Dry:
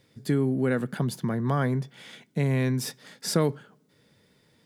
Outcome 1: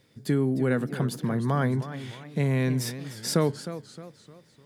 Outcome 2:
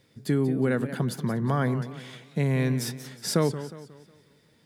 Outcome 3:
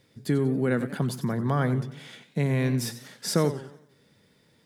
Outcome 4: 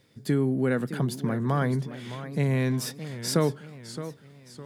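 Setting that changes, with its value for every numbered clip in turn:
warbling echo, time: 305, 181, 91, 614 ms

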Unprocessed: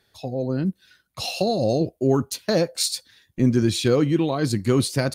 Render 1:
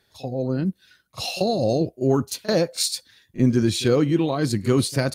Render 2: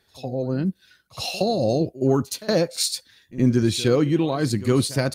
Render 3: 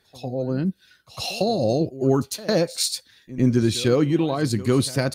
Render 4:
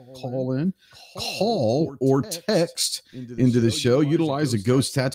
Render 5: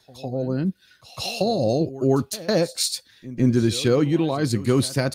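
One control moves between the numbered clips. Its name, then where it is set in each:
pre-echo, time: 39, 68, 103, 252, 154 ms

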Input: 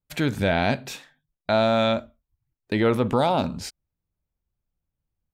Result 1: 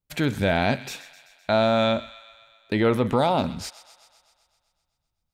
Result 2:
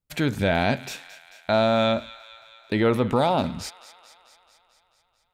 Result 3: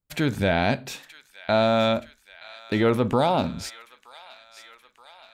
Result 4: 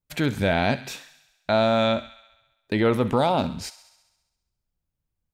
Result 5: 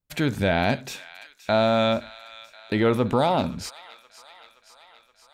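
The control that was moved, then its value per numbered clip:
thin delay, time: 128, 220, 924, 67, 522 ms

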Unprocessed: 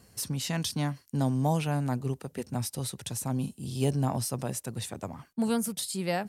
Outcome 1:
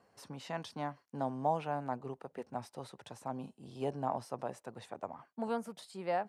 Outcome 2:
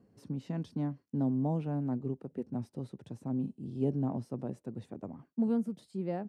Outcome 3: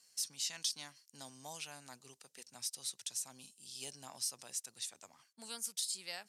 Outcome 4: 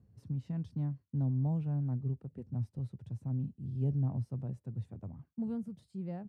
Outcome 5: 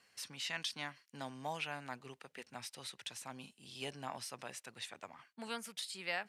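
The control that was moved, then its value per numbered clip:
band-pass, frequency: 810, 280, 5900, 100, 2300 Hz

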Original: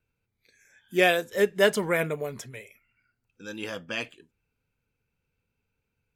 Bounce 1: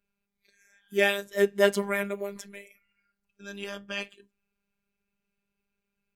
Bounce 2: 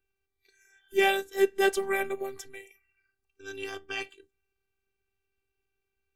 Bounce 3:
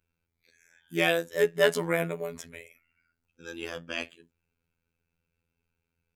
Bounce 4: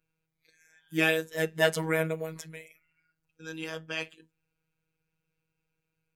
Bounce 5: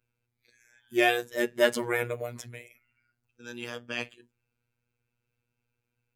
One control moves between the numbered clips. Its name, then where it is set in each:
robotiser, frequency: 200, 390, 84, 160, 120 Hz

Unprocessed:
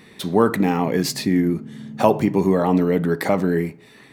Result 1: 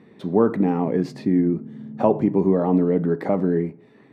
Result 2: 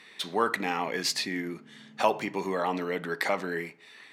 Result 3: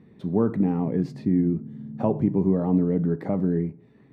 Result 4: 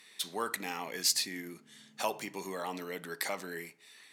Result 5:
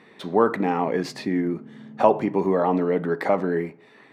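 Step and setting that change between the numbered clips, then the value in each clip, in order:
band-pass, frequency: 300, 2900, 110, 8000, 810 Hz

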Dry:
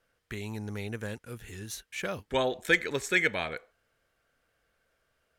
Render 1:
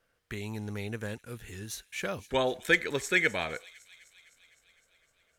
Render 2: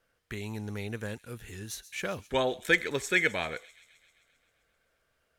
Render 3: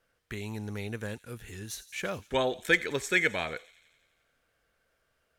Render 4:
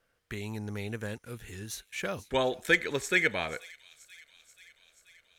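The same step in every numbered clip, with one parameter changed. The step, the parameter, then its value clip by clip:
thin delay, time: 255, 131, 87, 483 ms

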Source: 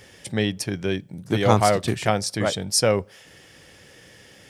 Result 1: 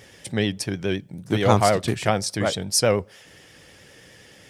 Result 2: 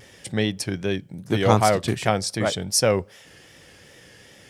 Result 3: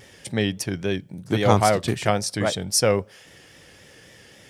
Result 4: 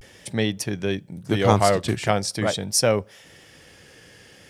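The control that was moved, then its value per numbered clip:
vibrato, rate: 9.5, 2.6, 3.7, 0.43 Hz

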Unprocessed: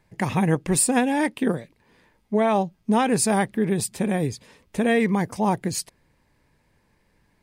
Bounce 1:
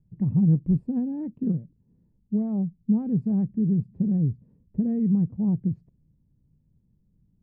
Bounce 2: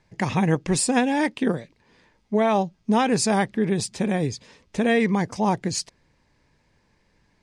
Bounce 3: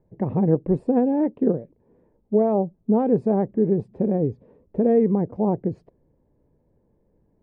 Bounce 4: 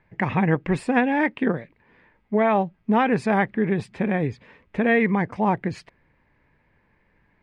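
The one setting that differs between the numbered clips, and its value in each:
synth low-pass, frequency: 170, 6100, 490, 2100 Hz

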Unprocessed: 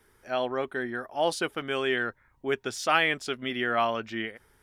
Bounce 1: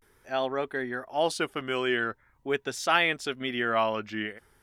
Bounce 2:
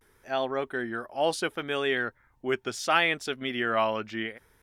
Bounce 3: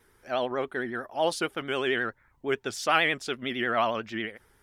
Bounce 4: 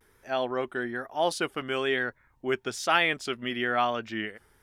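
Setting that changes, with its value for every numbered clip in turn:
vibrato, rate: 0.43, 0.71, 11, 1.1 Hz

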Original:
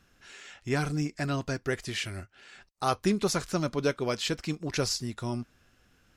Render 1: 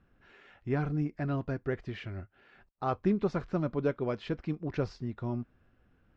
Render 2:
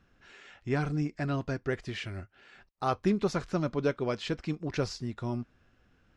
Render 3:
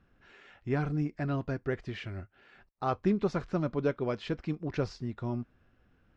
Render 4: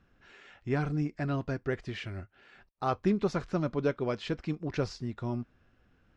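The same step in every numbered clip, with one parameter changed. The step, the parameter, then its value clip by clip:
tape spacing loss, at 10 kHz: 46, 20, 37, 29 dB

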